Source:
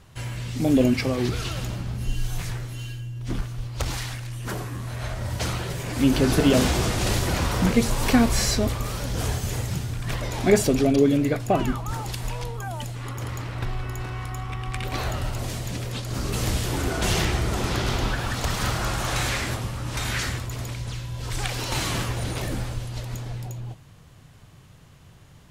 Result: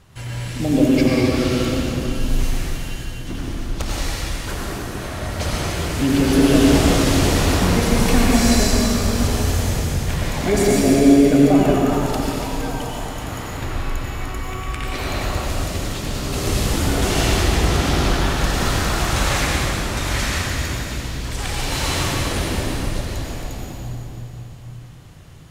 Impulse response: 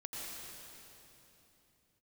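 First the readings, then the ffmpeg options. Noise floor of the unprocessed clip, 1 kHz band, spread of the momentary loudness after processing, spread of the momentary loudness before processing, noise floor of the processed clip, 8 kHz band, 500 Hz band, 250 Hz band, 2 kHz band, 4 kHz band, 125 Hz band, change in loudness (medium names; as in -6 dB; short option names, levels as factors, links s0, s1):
-50 dBFS, +5.5 dB, 14 LU, 13 LU, -34 dBFS, +6.0 dB, +5.5 dB, +7.0 dB, +5.5 dB, +6.0 dB, +4.0 dB, +6.0 dB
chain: -filter_complex "[0:a]asplit=2[s0][s1];[s1]alimiter=limit=0.2:level=0:latency=1,volume=1.33[s2];[s0][s2]amix=inputs=2:normalize=0[s3];[1:a]atrim=start_sample=2205[s4];[s3][s4]afir=irnorm=-1:irlink=0,volume=0.891"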